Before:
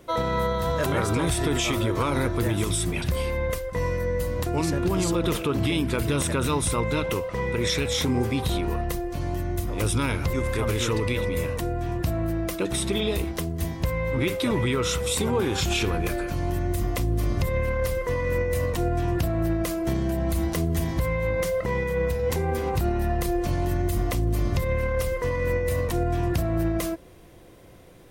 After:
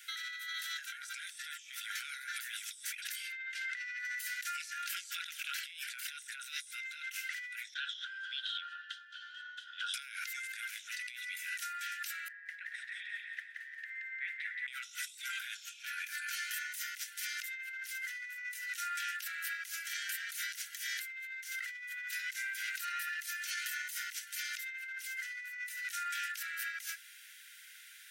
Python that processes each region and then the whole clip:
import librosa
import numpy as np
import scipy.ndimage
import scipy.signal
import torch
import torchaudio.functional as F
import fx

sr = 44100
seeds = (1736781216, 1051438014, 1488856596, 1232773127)

y = fx.chain(x, sr, fx.lowpass(hz=3800.0, slope=12),
    fx.env_flatten(amount_pct=70), at=(3.32, 4.05))
y = fx.chain(y, sr, fx.double_bandpass(hz=2200.0, octaves=1.1),
    fx.air_absorb(metres=81.0), at=(7.74, 9.94))
y = fx.chain(y, sr, fx.bandpass_q(hz=1800.0, q=16.0),
    fx.echo_feedback(ms=175, feedback_pct=42, wet_db=-4.0), at=(12.28, 14.68))
y = scipy.signal.sosfilt(scipy.signal.cheby1(10, 1.0, 1400.0, 'highpass', fs=sr, output='sos'), y)
y = fx.dynamic_eq(y, sr, hz=5900.0, q=4.9, threshold_db=-53.0, ratio=4.0, max_db=5)
y = fx.over_compress(y, sr, threshold_db=-44.0, ratio=-1.0)
y = y * 10.0 ** (1.0 / 20.0)